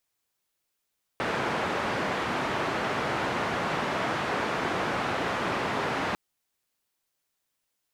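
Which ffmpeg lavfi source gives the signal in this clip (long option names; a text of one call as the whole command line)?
ffmpeg -f lavfi -i "anoisesrc=color=white:duration=4.95:sample_rate=44100:seed=1,highpass=frequency=110,lowpass=frequency=1400,volume=-12.3dB" out.wav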